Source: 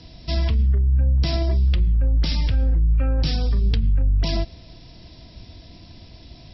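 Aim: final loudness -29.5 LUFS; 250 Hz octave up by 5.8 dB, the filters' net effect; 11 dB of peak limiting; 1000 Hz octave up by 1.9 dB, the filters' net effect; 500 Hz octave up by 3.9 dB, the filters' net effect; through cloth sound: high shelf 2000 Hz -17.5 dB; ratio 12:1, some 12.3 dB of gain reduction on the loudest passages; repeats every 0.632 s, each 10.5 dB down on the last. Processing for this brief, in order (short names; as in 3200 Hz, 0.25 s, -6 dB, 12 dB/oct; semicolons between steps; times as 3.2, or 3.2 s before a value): bell 250 Hz +7 dB; bell 500 Hz +4 dB; bell 1000 Hz +4 dB; compressor 12:1, threshold -27 dBFS; limiter -29.5 dBFS; high shelf 2000 Hz -17.5 dB; feedback echo 0.632 s, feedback 30%, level -10.5 dB; gain +9.5 dB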